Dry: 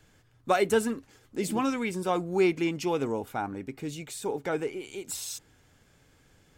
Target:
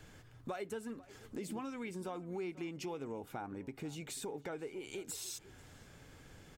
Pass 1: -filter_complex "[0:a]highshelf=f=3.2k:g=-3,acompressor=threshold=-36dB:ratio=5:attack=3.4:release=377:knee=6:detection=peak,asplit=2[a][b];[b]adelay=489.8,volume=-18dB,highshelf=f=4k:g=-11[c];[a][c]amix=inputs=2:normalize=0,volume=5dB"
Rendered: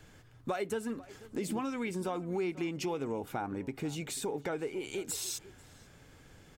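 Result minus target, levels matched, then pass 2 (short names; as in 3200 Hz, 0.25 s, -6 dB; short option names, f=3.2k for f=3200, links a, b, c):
compressor: peak gain reduction -7 dB
-filter_complex "[0:a]highshelf=f=3.2k:g=-3,acompressor=threshold=-45dB:ratio=5:attack=3.4:release=377:knee=6:detection=peak,asplit=2[a][b];[b]adelay=489.8,volume=-18dB,highshelf=f=4k:g=-11[c];[a][c]amix=inputs=2:normalize=0,volume=5dB"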